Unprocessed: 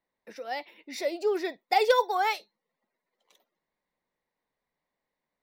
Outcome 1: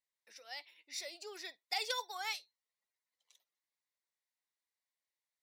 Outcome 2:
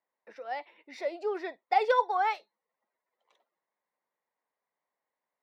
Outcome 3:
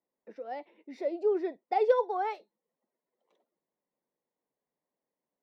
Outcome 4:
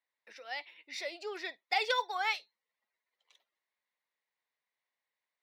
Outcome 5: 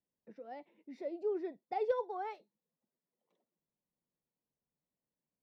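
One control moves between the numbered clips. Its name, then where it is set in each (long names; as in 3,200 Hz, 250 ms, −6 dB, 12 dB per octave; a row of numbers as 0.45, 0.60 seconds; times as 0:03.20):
resonant band-pass, frequency: 7,100, 1,000, 360, 2,800, 130 Hertz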